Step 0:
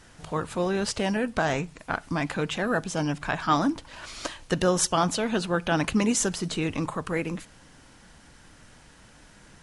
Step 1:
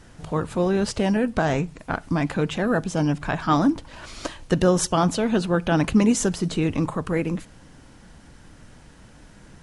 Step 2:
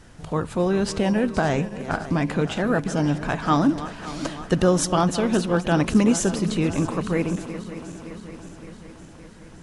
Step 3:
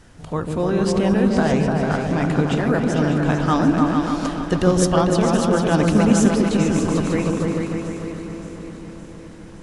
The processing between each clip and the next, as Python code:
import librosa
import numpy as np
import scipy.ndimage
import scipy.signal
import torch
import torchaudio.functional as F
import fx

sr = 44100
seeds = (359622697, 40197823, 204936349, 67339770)

y1 = fx.tilt_shelf(x, sr, db=4.0, hz=650.0)
y1 = F.gain(torch.from_numpy(y1), 3.0).numpy()
y2 = fx.reverse_delay_fb(y1, sr, ms=283, feedback_pct=77, wet_db=-13.5)
y3 = fx.echo_opening(y2, sr, ms=149, hz=400, octaves=2, feedback_pct=70, wet_db=0)